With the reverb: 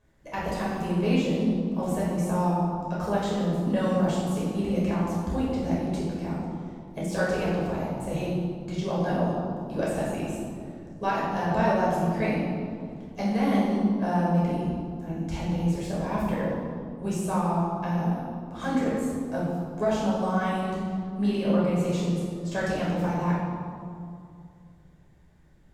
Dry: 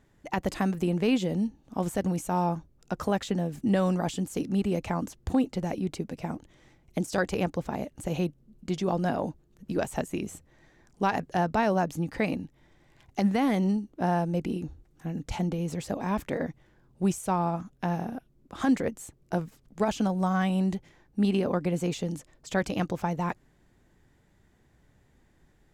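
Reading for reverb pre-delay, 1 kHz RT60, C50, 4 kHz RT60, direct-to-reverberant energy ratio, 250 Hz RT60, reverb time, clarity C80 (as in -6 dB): 9 ms, 2.3 s, -1.0 dB, 1.4 s, -7.0 dB, 2.9 s, 2.3 s, 1.5 dB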